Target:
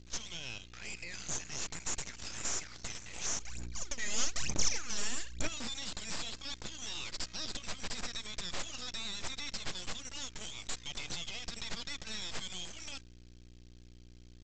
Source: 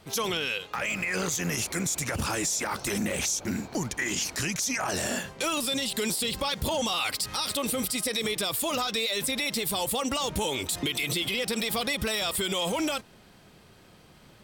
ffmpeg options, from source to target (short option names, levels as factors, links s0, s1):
-filter_complex "[0:a]highpass=f=1400:w=0.5412,highpass=f=1400:w=1.3066,aderivative,aeval=exprs='val(0)+0.00316*(sin(2*PI*60*n/s)+sin(2*PI*2*60*n/s)/2+sin(2*PI*3*60*n/s)/3+sin(2*PI*4*60*n/s)/4+sin(2*PI*5*60*n/s)/5)':c=same,aeval=exprs='max(val(0),0)':c=same,asplit=3[s0][s1][s2];[s0]afade=t=out:st=3.4:d=0.02[s3];[s1]aphaser=in_gain=1:out_gain=1:delay=4.9:decay=0.8:speed=1.1:type=sinusoidal,afade=t=in:st=3.4:d=0.02,afade=t=out:st=5.47:d=0.02[s4];[s2]afade=t=in:st=5.47:d=0.02[s5];[s3][s4][s5]amix=inputs=3:normalize=0,aresample=16000,aresample=44100"